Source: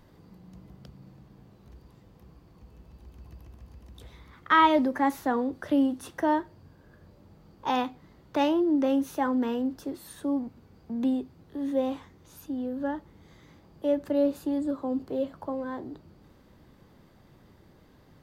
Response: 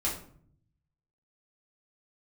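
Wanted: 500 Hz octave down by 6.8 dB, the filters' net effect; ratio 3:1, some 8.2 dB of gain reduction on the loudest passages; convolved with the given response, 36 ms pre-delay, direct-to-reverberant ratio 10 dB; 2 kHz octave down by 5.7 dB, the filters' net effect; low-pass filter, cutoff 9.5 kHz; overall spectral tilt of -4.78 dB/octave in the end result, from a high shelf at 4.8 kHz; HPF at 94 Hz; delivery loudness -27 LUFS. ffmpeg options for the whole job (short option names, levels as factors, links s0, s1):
-filter_complex "[0:a]highpass=94,lowpass=9500,equalizer=f=500:t=o:g=-8,equalizer=f=2000:t=o:g=-8,highshelf=f=4800:g=8.5,acompressor=threshold=0.0355:ratio=3,asplit=2[s0][s1];[1:a]atrim=start_sample=2205,adelay=36[s2];[s1][s2]afir=irnorm=-1:irlink=0,volume=0.15[s3];[s0][s3]amix=inputs=2:normalize=0,volume=2.37"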